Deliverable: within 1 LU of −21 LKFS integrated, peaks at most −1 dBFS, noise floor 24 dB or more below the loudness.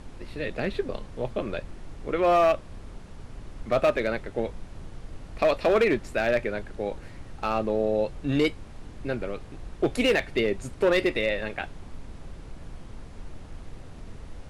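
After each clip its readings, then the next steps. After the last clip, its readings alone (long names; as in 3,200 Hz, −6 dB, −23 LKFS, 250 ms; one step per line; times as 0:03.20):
share of clipped samples 0.8%; peaks flattened at −15.5 dBFS; background noise floor −44 dBFS; target noise floor −51 dBFS; integrated loudness −26.5 LKFS; sample peak −15.5 dBFS; target loudness −21.0 LKFS
→ clipped peaks rebuilt −15.5 dBFS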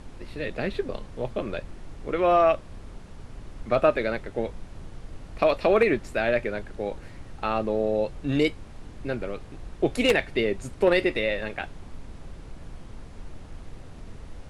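share of clipped samples 0.0%; background noise floor −44 dBFS; target noise floor −50 dBFS
→ noise reduction from a noise print 6 dB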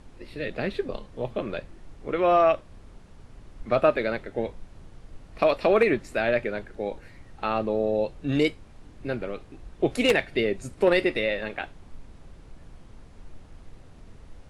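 background noise floor −49 dBFS; target noise floor −50 dBFS
→ noise reduction from a noise print 6 dB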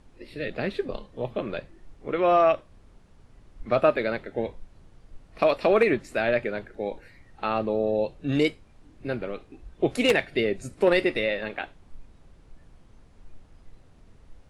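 background noise floor −55 dBFS; integrated loudness −26.0 LKFS; sample peak −6.5 dBFS; target loudness −21.0 LKFS
→ level +5 dB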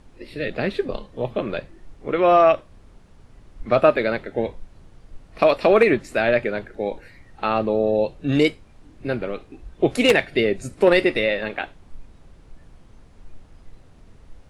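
integrated loudness −21.0 LKFS; sample peak −1.5 dBFS; background noise floor −50 dBFS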